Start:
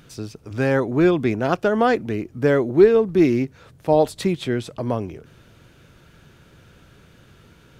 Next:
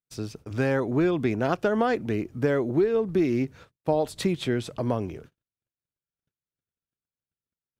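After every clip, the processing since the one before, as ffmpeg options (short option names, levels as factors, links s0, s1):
-af "agate=range=0.00282:threshold=0.00708:ratio=16:detection=peak,acompressor=threshold=0.126:ratio=6,volume=0.841"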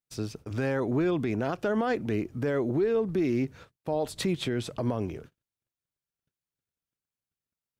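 -af "alimiter=limit=0.112:level=0:latency=1:release=46"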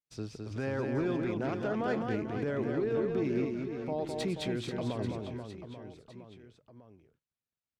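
-af "aecho=1:1:210|483|837.9|1299|1899:0.631|0.398|0.251|0.158|0.1,adynamicsmooth=sensitivity=4:basefreq=7700,volume=0.501"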